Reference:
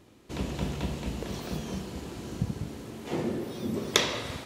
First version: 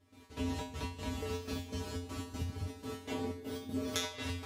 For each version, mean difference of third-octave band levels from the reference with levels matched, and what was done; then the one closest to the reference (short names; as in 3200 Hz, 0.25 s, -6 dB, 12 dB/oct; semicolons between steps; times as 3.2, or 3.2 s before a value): 5.5 dB: compressor 6:1, threshold -34 dBFS, peak gain reduction 16.5 dB; step gate ".x.xx.x.xxx" 122 bpm -12 dB; resonator 88 Hz, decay 0.36 s, harmonics odd, mix 100%; gain +14.5 dB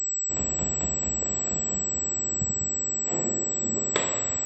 11.0 dB: bell 690 Hz +4 dB 1.4 oct; reverse; upward compressor, threshold -39 dBFS; reverse; pulse-width modulation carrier 7800 Hz; gain -2.5 dB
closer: first